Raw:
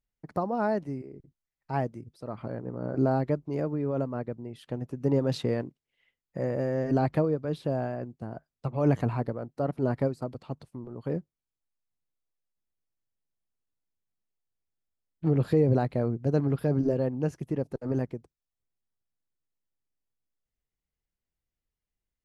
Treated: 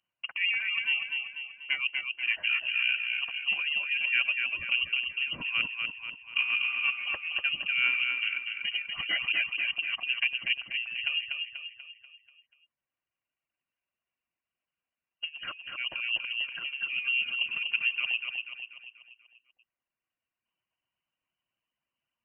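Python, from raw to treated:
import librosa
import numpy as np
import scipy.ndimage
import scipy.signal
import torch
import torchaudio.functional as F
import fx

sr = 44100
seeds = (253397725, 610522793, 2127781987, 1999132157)

p1 = fx.self_delay(x, sr, depth_ms=0.06)
p2 = fx.over_compress(p1, sr, threshold_db=-31.0, ratio=-0.5)
p3 = fx.highpass(p2, sr, hz=230.0, slope=6)
p4 = fx.notch_comb(p3, sr, f0_hz=430.0)
p5 = fx.dereverb_blind(p4, sr, rt60_s=1.5)
p6 = p5 + fx.echo_feedback(p5, sr, ms=243, feedback_pct=48, wet_db=-4.5, dry=0)
p7 = fx.freq_invert(p6, sr, carrier_hz=3000)
y = p7 * 10.0 ** (6.0 / 20.0)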